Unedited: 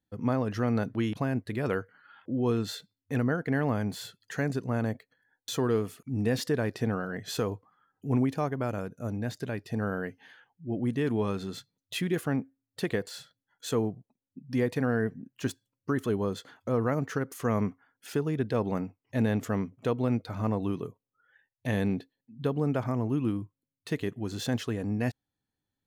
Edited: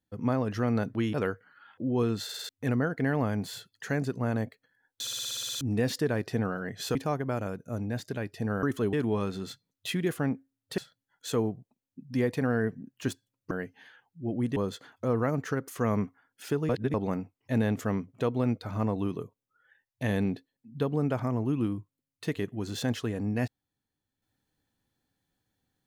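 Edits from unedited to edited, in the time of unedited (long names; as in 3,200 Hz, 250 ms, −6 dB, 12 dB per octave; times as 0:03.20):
0:01.14–0:01.62: remove
0:02.72: stutter in place 0.05 s, 5 plays
0:05.49: stutter in place 0.06 s, 10 plays
0:07.43–0:08.27: remove
0:09.95–0:11.00: swap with 0:15.90–0:16.20
0:12.85–0:13.17: remove
0:18.33–0:18.58: reverse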